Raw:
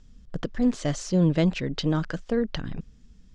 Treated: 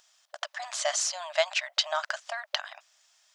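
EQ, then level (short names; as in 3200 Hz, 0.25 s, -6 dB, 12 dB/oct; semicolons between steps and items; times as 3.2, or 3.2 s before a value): brick-wall FIR high-pass 580 Hz; high shelf 6100 Hz +8.5 dB; +5.0 dB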